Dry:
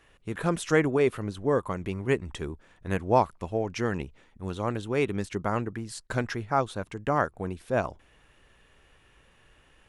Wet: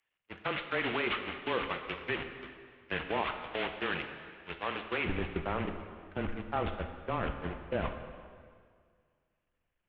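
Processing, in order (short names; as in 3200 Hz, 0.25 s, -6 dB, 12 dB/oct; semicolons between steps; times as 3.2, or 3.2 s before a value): delta modulation 16 kbps, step -27 dBFS; gate -28 dBFS, range -52 dB; high shelf 2200 Hz +10 dB; harmonic-percussive split harmonic -10 dB; tilt +2 dB/oct, from 5.04 s -2 dB/oct; limiter -22.5 dBFS, peak gain reduction 12 dB; frequency shift -18 Hz; plate-style reverb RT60 2 s, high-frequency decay 0.85×, DRR 6 dB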